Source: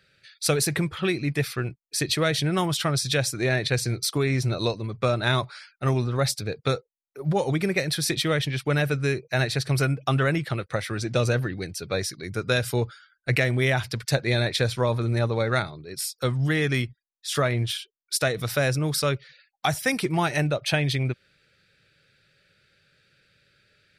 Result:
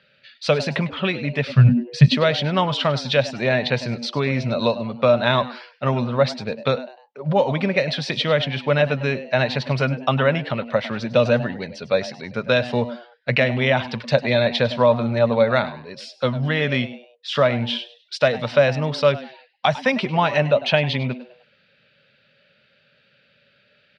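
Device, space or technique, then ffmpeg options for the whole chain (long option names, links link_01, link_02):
frequency-shifting delay pedal into a guitar cabinet: -filter_complex "[0:a]asettb=1/sr,asplit=3[link_01][link_02][link_03];[link_01]atrim=end=1.494[link_04];[link_02]atrim=start=1.49:end=2.08,asetpts=PTS-STARTPTS,afade=type=in:duration=0.004:curve=qsin,afade=type=out:start_time=0.586:duration=0.004:curve=qsin,lowshelf=frequency=210:width_type=q:width=3:gain=13[link_05];[link_03]atrim=start=2.076[link_06];[link_04][link_05]acrossfade=duration=0.004:curve1=hsin:curve2=qsin[link_07];[link_07][link_06]acrossfade=duration=0.004:curve1=qsin:curve2=hsin,asplit=4[link_08][link_09][link_10][link_11];[link_09]adelay=101,afreqshift=120,volume=-16.5dB[link_12];[link_10]adelay=202,afreqshift=240,volume=-26.1dB[link_13];[link_11]adelay=303,afreqshift=360,volume=-35.8dB[link_14];[link_08][link_12][link_13][link_14]amix=inputs=4:normalize=0,highpass=95,equalizer=frequency=97:width_type=q:width=4:gain=-7,equalizer=frequency=230:width_type=q:width=4:gain=9,equalizer=frequency=330:width_type=q:width=4:gain=-10,equalizer=frequency=580:width_type=q:width=4:gain=10,equalizer=frequency=970:width_type=q:width=4:gain=8,equalizer=frequency=2900:width_type=q:width=4:gain=7,lowpass=frequency=4500:width=0.5412,lowpass=frequency=4500:width=1.3066,volume=2dB"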